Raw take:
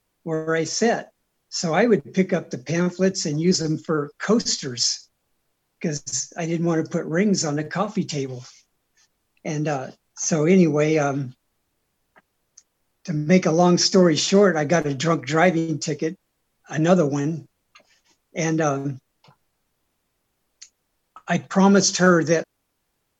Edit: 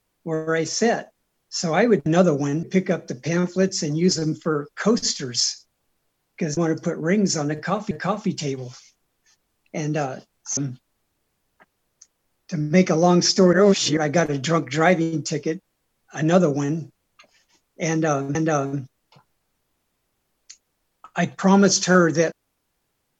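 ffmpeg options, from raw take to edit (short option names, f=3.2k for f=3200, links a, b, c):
-filter_complex "[0:a]asplit=9[a][b][c][d][e][f][g][h][i];[a]atrim=end=2.062[j];[b]atrim=start=16.778:end=17.352[k];[c]atrim=start=2.058:end=6.002[l];[d]atrim=start=6.648:end=7.992[m];[e]atrim=start=7.618:end=10.282[n];[f]atrim=start=11.128:end=14.092[o];[g]atrim=start=14.088:end=14.532,asetpts=PTS-STARTPTS,areverse[p];[h]atrim=start=14.528:end=18.912[q];[i]atrim=start=18.468[r];[j][k]acrossfade=d=0.004:c1=hsin:c2=hsin[s];[s][l]acrossfade=d=0.004:c1=hsin:c2=hsin[t];[t][m]acrossfade=d=0.004:c1=hsin:c2=hsin[u];[u][n]acrossfade=d=0.004:c1=hsin:c2=hsin[v];[v][o]acrossfade=d=0.004:c1=hsin:c2=hsin[w];[w][p]acrossfade=d=0.004:c1=hsin:c2=hsin[x];[x][q]acrossfade=d=0.004:c1=hsin:c2=hsin[y];[y][r]acrossfade=d=0.004:c1=hsin:c2=hsin"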